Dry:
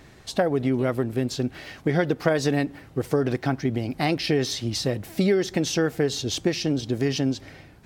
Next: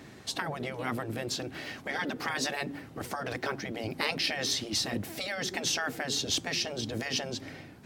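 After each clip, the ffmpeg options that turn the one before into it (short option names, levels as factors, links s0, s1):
-af "highpass=100,afftfilt=real='re*lt(hypot(re,im),0.2)':imag='im*lt(hypot(re,im),0.2)':win_size=1024:overlap=0.75,equalizer=f=250:t=o:w=0.67:g=5"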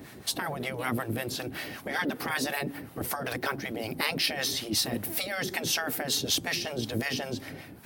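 -filter_complex "[0:a]acrossover=split=670[s0][s1];[s0]aeval=exprs='val(0)*(1-0.7/2+0.7/2*cos(2*PI*5.3*n/s))':c=same[s2];[s1]aeval=exprs='val(0)*(1-0.7/2-0.7/2*cos(2*PI*5.3*n/s))':c=same[s3];[s2][s3]amix=inputs=2:normalize=0,asplit=2[s4][s5];[s5]alimiter=level_in=1.12:limit=0.0631:level=0:latency=1:release=92,volume=0.891,volume=0.944[s6];[s4][s6]amix=inputs=2:normalize=0,aexciter=amount=4.5:drive=4.1:freq=9400"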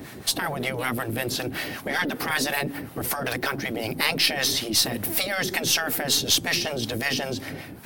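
-filter_complex "[0:a]acrossover=split=1600[s0][s1];[s0]alimiter=level_in=1.5:limit=0.0631:level=0:latency=1,volume=0.668[s2];[s2][s1]amix=inputs=2:normalize=0,aeval=exprs='0.224*(cos(1*acos(clip(val(0)/0.224,-1,1)))-cos(1*PI/2))+0.00708*(cos(6*acos(clip(val(0)/0.224,-1,1)))-cos(6*PI/2))':c=same,volume=2.11"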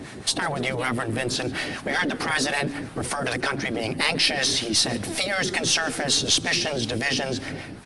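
-filter_complex "[0:a]asplit=2[s0][s1];[s1]aeval=exprs='0.0841*(abs(mod(val(0)/0.0841+3,4)-2)-1)':c=same,volume=0.282[s2];[s0][s2]amix=inputs=2:normalize=0,asplit=6[s3][s4][s5][s6][s7][s8];[s4]adelay=142,afreqshift=-110,volume=0.0841[s9];[s5]adelay=284,afreqshift=-220,volume=0.055[s10];[s6]adelay=426,afreqshift=-330,volume=0.0355[s11];[s7]adelay=568,afreqshift=-440,volume=0.0232[s12];[s8]adelay=710,afreqshift=-550,volume=0.015[s13];[s3][s9][s10][s11][s12][s13]amix=inputs=6:normalize=0,aresample=22050,aresample=44100"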